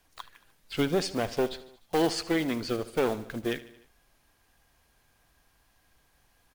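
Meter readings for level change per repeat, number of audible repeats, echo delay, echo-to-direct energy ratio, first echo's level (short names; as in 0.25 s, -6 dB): -4.5 dB, 4, 75 ms, -15.0 dB, -17.0 dB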